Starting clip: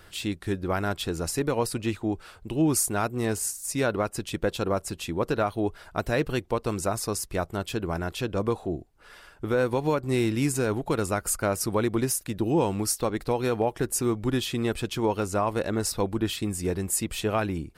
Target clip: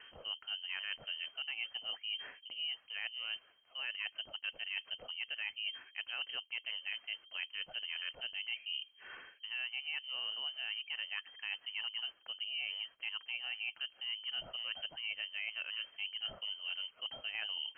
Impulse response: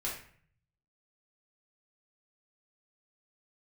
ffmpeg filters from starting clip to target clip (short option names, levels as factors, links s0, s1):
-af "areverse,acompressor=threshold=0.0112:ratio=6,areverse,lowpass=f=2700:t=q:w=0.5098,lowpass=f=2700:t=q:w=0.6013,lowpass=f=2700:t=q:w=0.9,lowpass=f=2700:t=q:w=2.563,afreqshift=-3200"